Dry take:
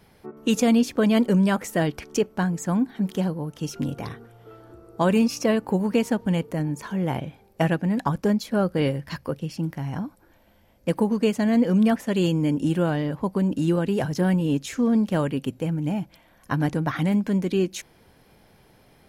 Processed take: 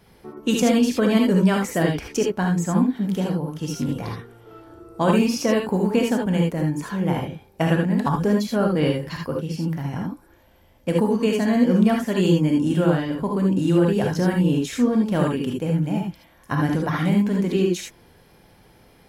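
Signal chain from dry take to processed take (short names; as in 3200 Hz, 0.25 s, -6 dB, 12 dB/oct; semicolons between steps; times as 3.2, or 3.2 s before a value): non-linear reverb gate 0.1 s rising, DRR 0.5 dB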